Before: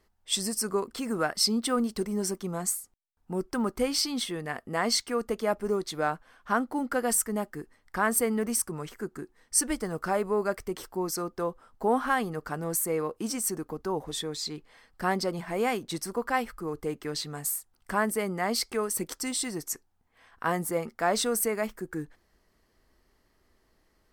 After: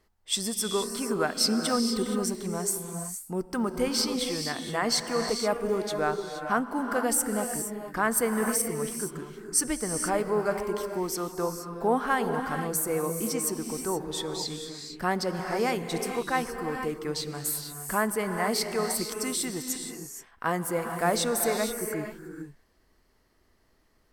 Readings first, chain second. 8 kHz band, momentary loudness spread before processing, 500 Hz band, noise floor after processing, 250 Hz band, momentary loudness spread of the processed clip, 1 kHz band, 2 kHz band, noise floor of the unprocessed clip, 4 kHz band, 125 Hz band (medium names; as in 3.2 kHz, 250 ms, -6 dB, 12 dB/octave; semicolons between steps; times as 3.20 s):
+1.0 dB, 9 LU, +1.5 dB, -66 dBFS, +1.0 dB, 8 LU, +1.0 dB, +1.0 dB, -70 dBFS, +1.0 dB, +2.0 dB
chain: gated-style reverb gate 500 ms rising, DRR 5 dB